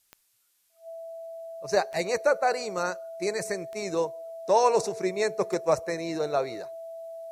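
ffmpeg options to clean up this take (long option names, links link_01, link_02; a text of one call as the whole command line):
ffmpeg -i in.wav -af "adeclick=threshold=4,bandreject=frequency=660:width=30,agate=range=-21dB:threshold=-57dB" out.wav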